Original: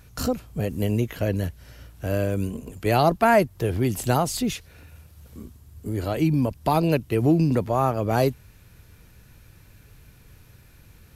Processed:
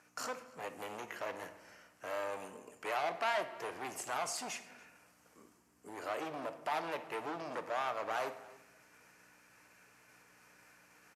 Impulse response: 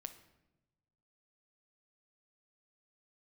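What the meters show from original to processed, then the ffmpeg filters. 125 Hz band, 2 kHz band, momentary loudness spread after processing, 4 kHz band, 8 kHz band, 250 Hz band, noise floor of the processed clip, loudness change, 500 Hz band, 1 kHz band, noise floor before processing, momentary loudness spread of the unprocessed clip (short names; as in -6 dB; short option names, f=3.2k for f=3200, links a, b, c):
-36.5 dB, -9.0 dB, 15 LU, -10.5 dB, -9.5 dB, -26.0 dB, -68 dBFS, -16.0 dB, -16.0 dB, -12.0 dB, -53 dBFS, 10 LU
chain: -filter_complex "[0:a]equalizer=f=3.7k:w=2.1:g=-14.5,alimiter=limit=-13.5dB:level=0:latency=1:release=80,areverse,acompressor=mode=upward:threshold=-40dB:ratio=2.5,areverse,asoftclip=type=hard:threshold=-24dB,aeval=exprs='val(0)+0.00708*(sin(2*PI*60*n/s)+sin(2*PI*2*60*n/s)/2+sin(2*PI*3*60*n/s)/3+sin(2*PI*4*60*n/s)/4+sin(2*PI*5*60*n/s)/5)':c=same,highpass=740,lowpass=6.9k,asplit=2[a][b];[b]adelay=285.7,volume=-21dB,highshelf=f=4k:g=-6.43[c];[a][c]amix=inputs=2:normalize=0[d];[1:a]atrim=start_sample=2205[e];[d][e]afir=irnorm=-1:irlink=0,volume=1.5dB"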